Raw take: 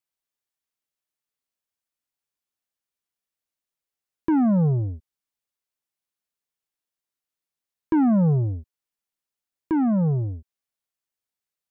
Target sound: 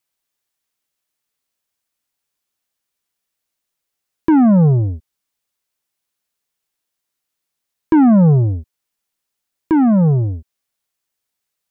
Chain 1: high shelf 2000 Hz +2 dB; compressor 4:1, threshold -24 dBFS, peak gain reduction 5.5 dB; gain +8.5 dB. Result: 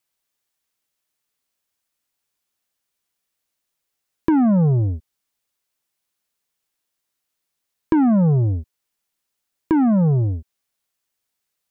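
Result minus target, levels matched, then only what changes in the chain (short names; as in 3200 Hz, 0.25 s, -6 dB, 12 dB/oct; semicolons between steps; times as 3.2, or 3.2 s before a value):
compressor: peak gain reduction +5.5 dB
remove: compressor 4:1, threshold -24 dBFS, peak gain reduction 5.5 dB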